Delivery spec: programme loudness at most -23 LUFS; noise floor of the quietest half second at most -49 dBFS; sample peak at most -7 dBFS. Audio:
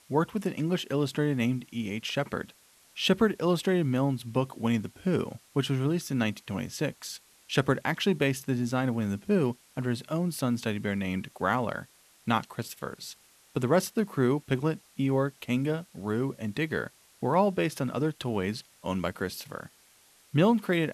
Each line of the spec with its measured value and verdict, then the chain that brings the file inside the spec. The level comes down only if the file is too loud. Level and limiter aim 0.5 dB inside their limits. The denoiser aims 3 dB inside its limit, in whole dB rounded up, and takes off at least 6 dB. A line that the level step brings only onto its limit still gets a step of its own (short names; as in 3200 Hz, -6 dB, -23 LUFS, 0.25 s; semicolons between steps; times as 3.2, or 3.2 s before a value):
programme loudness -29.5 LUFS: OK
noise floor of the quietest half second -60 dBFS: OK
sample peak -10.0 dBFS: OK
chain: none